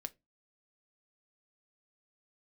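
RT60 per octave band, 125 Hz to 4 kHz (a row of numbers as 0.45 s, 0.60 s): 0.35 s, 0.35 s, 0.25 s, 0.15 s, 0.15 s, 0.15 s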